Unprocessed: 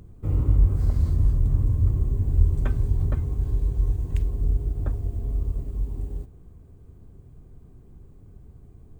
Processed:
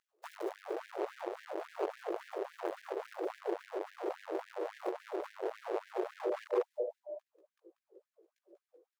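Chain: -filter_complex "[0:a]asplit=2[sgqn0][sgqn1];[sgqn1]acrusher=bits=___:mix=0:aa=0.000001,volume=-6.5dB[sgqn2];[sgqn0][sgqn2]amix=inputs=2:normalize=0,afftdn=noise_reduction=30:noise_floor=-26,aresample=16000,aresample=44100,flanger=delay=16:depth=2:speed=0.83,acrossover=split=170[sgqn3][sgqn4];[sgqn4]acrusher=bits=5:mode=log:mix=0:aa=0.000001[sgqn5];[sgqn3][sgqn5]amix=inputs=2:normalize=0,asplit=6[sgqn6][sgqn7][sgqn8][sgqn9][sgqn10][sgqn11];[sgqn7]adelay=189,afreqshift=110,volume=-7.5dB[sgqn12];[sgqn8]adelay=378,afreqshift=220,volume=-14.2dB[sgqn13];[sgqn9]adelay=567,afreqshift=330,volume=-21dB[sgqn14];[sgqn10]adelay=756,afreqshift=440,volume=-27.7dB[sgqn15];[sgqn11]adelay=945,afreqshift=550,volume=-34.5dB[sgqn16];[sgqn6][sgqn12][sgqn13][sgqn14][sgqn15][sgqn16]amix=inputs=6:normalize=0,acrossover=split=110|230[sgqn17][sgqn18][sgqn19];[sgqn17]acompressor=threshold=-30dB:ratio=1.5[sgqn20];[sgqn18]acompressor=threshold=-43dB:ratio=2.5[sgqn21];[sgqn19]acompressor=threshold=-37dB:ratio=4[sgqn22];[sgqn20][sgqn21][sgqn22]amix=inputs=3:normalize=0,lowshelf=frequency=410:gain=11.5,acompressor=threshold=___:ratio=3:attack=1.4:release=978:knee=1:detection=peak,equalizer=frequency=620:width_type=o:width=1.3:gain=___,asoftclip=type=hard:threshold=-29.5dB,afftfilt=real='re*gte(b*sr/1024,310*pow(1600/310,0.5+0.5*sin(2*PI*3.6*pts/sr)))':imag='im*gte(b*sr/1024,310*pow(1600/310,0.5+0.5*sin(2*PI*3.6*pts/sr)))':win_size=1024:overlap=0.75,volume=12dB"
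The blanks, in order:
5, -22dB, 6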